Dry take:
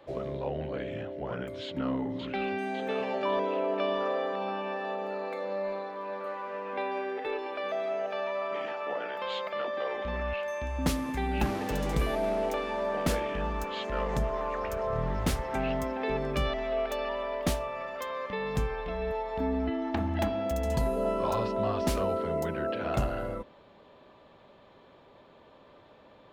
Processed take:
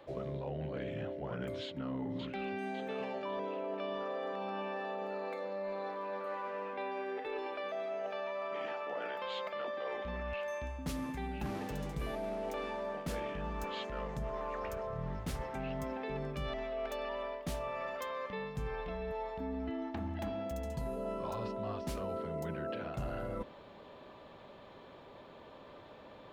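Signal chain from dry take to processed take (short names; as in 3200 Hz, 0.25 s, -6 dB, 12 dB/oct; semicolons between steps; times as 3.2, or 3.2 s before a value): dynamic EQ 150 Hz, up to +6 dB, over -47 dBFS, Q 1.9; reverse; compressor 6:1, threshold -39 dBFS, peak gain reduction 17.5 dB; reverse; hard clip -32 dBFS, distortion -40 dB; gain +2.5 dB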